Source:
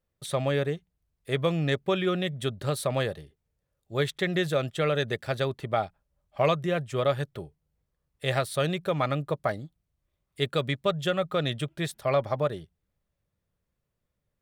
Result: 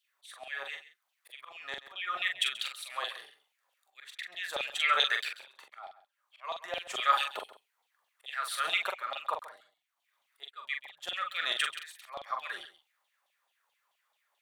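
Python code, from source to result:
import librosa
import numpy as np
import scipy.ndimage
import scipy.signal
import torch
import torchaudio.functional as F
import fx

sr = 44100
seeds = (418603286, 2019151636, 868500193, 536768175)

p1 = scipy.signal.sosfilt(scipy.signal.butter(4, 120.0, 'highpass', fs=sr, output='sos'), x)
p2 = fx.low_shelf(p1, sr, hz=300.0, db=-9.5)
p3 = fx.notch(p2, sr, hz=5200.0, q=24.0)
p4 = fx.over_compress(p3, sr, threshold_db=-35.0, ratio=-0.5)
p5 = p3 + (p4 * librosa.db_to_amplitude(-2.0))
p6 = fx.auto_swell(p5, sr, attack_ms=751.0)
p7 = fx.filter_lfo_highpass(p6, sr, shape='saw_down', hz=4.6, low_hz=720.0, high_hz=3600.0, q=5.9)
p8 = fx.doubler(p7, sr, ms=43.0, db=-5.0)
p9 = p8 + 10.0 ** (-15.5 / 20.0) * np.pad(p8, (int(134 * sr / 1000.0), 0))[:len(p8)]
y = p9 * librosa.db_to_amplitude(-2.5)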